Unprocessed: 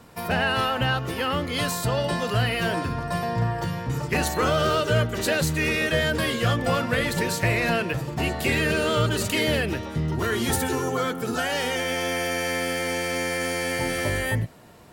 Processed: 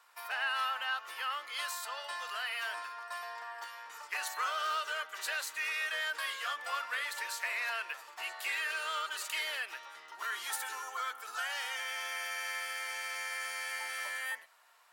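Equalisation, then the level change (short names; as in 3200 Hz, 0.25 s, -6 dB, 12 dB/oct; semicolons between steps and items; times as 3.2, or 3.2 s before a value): ladder high-pass 880 Hz, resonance 30%; -3.5 dB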